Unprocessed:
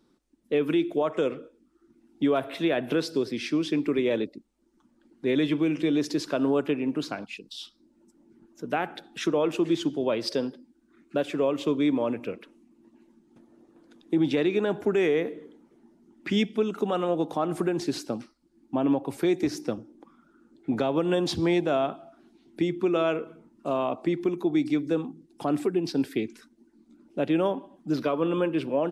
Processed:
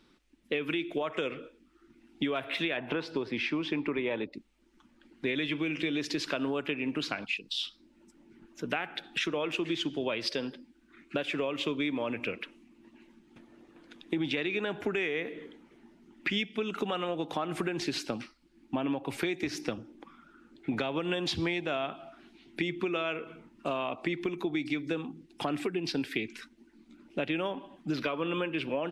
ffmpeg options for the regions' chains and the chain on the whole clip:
-filter_complex "[0:a]asettb=1/sr,asplit=3[a][b][c];[a]atrim=end=2.774[d];[b]atrim=start=2.77:end=4.33,asetpts=PTS-STARTPTS,afade=t=in:d=0.004:c=qsin,afade=t=out:st=1.556:d=0.004:c=qsin,lowpass=f=1.7k:p=1,equalizer=f=910:t=o:w=0.58:g=11[e];[c]atrim=start=4.326[f];[d][e]acrossfade=d=0.004:c1=hsin:c2=qsin[g];[g][f]acrossfade=d=0.004:c1=qsin:c2=hsin,equalizer=f=2.5k:w=0.71:g=14.5,acompressor=threshold=-28dB:ratio=5,lowshelf=f=95:g=9.5,volume=-1.5dB"

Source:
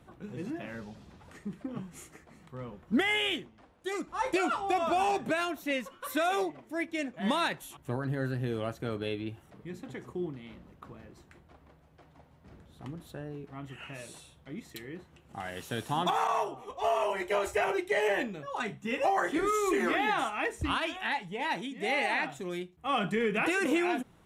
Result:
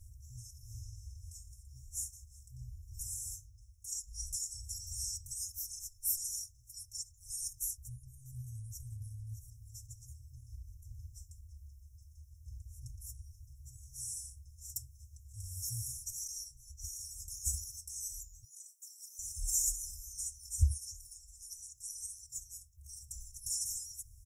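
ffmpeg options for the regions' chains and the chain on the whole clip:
-filter_complex "[0:a]asettb=1/sr,asplit=3[a][b][c];[a]atrim=end=7.834[d];[b]atrim=start=7.83:end=10.02,asetpts=PTS-STARTPTS,afade=t=in:d=0.004:c=qsin,afade=t=out:st=2.186:d=0.004:c=qsin,acompressor=threshold=-37dB:ratio=2.5:attack=3.2:release=140:knee=1:detection=peak,aecho=1:1:616:0.237,atrim=end_sample=96579[e];[c]atrim=start=10.016[f];[d][e]acrossfade=d=0.004:c1=hsin:c2=qsin[g];[g][f]acrossfade=d=0.004:c1=qsin:c2=hsin,asettb=1/sr,asplit=3[h][i][j];[h]atrim=end=18.444[k];[i]atrim=start=18.44:end=19.19,asetpts=PTS-STARTPTS,afade=t=in:d=0.004:c=qsin,afade=t=out:st=0.746:d=0.004:c=qsin,aderivative,afreqshift=140,acompressor=threshold=-49dB:ratio=6:attack=3.2:release=140:knee=1:detection=peak[l];[j]atrim=start=19.186[m];[k][l]acrossfade=d=0.004:c1=hsin:c2=qsin[n];[n][m]acrossfade=d=0.004:c1=qsin:c2=hsin,aecho=1:1:3.7:0.95,afftfilt=real='re*(1-between(b*sr/4096,130,5200))':imag='im*(1-between(b*sr/4096,130,5200))':win_size=4096:overlap=0.75,volume=8.5dB"

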